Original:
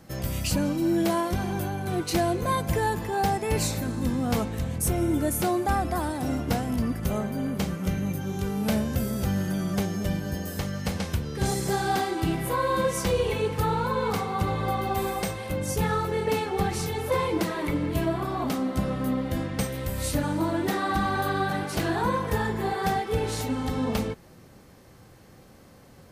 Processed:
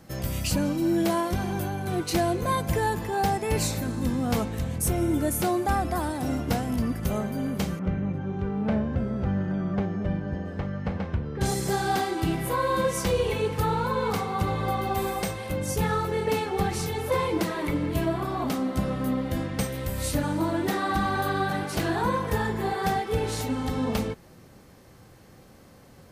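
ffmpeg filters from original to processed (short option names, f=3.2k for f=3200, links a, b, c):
-filter_complex "[0:a]asettb=1/sr,asplit=3[a][b][c];[a]atrim=end=7.794[d];[b]atrim=start=7.79:end=11.41,asetpts=PTS-STARTPTS,afade=t=in:d=0.004:c=qsin,afade=t=out:st=3.616:d=0.004:c=qsin,lowpass=1.7k[e];[c]atrim=start=11.406[f];[d][e]acrossfade=d=0.004:c1=hsin:c2=qsin[g];[g][f]acrossfade=d=0.004:c1=qsin:c2=hsin"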